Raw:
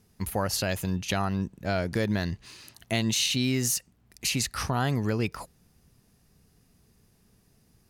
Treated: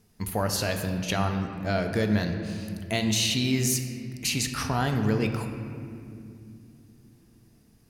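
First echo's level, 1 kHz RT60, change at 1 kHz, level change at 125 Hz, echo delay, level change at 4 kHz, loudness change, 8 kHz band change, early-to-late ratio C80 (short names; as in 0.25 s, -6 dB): none, 2.2 s, +1.5 dB, +2.0 dB, none, +1.0 dB, +1.0 dB, +0.5 dB, 7.5 dB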